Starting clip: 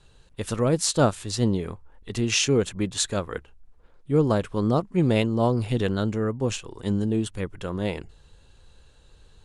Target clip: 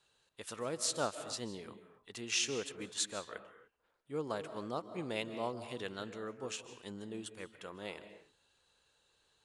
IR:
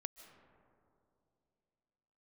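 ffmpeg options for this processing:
-filter_complex "[0:a]highpass=f=830:p=1[s0];[1:a]atrim=start_sample=2205,afade=t=out:st=0.36:d=0.01,atrim=end_sample=16317[s1];[s0][s1]afir=irnorm=-1:irlink=0,volume=0.531"

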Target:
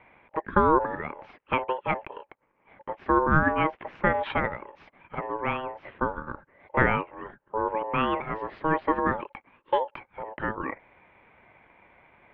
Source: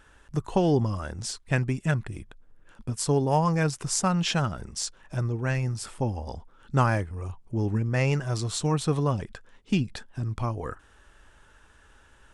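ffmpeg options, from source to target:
-af "highpass=f=200:t=q:w=0.5412,highpass=f=200:t=q:w=1.307,lowpass=f=2200:t=q:w=0.5176,lowpass=f=2200:t=q:w=0.7071,lowpass=f=2200:t=q:w=1.932,afreqshift=-61,aeval=exprs='val(0)*sin(2*PI*710*n/s)':c=same,volume=2"

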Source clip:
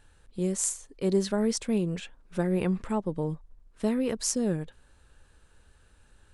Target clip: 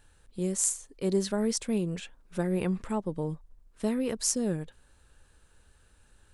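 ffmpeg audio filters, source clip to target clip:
-af "highshelf=f=7200:g=6.5,volume=0.794"

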